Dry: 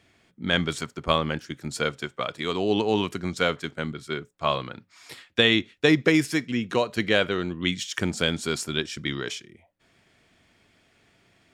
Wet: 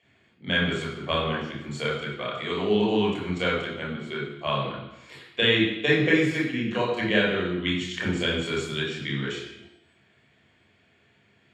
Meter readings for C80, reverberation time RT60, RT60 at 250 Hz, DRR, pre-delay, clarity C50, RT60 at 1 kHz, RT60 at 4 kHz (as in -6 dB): 6.0 dB, 0.90 s, 0.90 s, -4.5 dB, 26 ms, 2.5 dB, 0.90 s, 0.90 s